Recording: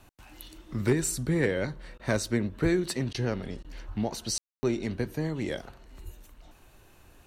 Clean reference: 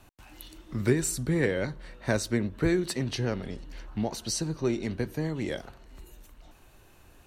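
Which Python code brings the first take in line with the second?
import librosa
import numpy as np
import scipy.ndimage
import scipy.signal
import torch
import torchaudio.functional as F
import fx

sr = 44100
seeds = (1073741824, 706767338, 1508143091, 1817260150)

y = fx.fix_declip(x, sr, threshold_db=-15.5)
y = fx.highpass(y, sr, hz=140.0, slope=24, at=(3.87, 3.99), fade=0.02)
y = fx.highpass(y, sr, hz=140.0, slope=24, at=(6.04, 6.16), fade=0.02)
y = fx.fix_ambience(y, sr, seeds[0], print_start_s=6.54, print_end_s=7.04, start_s=4.38, end_s=4.63)
y = fx.fix_interpolate(y, sr, at_s=(1.98, 3.13, 3.63), length_ms=13.0)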